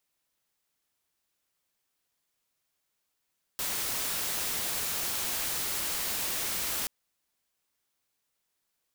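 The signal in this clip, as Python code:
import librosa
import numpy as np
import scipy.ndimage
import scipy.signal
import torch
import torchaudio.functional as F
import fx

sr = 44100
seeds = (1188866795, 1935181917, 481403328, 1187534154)

y = fx.noise_colour(sr, seeds[0], length_s=3.28, colour='white', level_db=-32.0)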